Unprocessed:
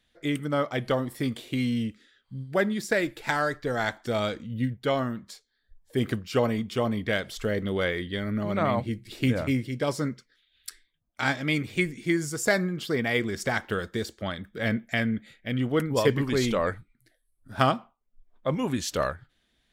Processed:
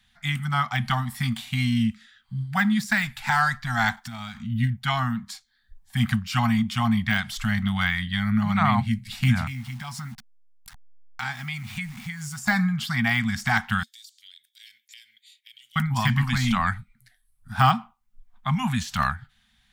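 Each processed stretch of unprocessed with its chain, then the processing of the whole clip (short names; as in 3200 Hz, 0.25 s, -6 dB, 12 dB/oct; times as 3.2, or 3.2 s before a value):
3.96–4.38 G.711 law mismatch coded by mu + gate -48 dBFS, range -15 dB + compressor 3:1, threshold -41 dBFS
9.47–12.39 level-crossing sampler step -45.5 dBFS + compressor 2.5:1, threshold -38 dBFS
13.83–15.76 inverse Chebyshev high-pass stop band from 1000 Hz, stop band 60 dB + compressor 3:1, threshold -54 dBFS
whole clip: Chebyshev band-stop 230–750 Hz, order 4; de-esser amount 90%; gain +7.5 dB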